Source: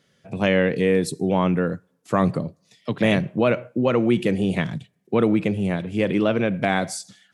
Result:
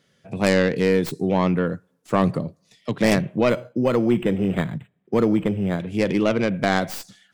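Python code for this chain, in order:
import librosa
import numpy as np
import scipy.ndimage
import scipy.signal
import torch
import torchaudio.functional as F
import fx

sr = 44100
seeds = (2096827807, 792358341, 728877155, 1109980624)

y = fx.tracing_dist(x, sr, depth_ms=0.2)
y = fx.resample_linear(y, sr, factor=8, at=(3.49, 5.8))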